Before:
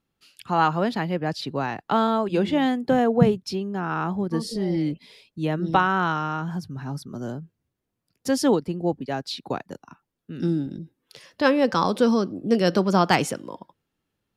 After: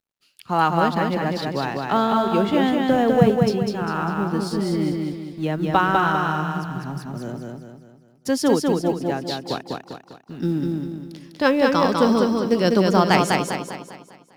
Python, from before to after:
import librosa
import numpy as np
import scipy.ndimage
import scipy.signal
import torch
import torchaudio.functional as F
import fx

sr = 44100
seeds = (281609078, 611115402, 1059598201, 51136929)

y = fx.law_mismatch(x, sr, coded='A')
y = fx.echo_feedback(y, sr, ms=200, feedback_pct=44, wet_db=-3)
y = y * 10.0 ** (1.5 / 20.0)